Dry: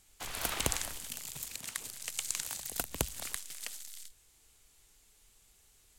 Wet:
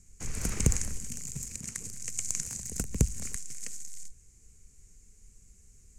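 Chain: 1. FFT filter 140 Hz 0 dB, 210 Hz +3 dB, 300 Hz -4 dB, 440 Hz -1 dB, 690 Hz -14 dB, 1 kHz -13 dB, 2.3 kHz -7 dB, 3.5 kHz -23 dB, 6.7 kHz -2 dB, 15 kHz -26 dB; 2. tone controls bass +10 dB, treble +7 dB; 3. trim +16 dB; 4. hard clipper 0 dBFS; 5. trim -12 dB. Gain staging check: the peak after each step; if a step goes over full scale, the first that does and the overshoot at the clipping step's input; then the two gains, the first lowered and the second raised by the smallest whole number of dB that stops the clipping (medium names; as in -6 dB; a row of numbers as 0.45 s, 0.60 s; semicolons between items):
-16.5 dBFS, -10.0 dBFS, +6.0 dBFS, 0.0 dBFS, -12.0 dBFS; step 3, 6.0 dB; step 3 +10 dB, step 5 -6 dB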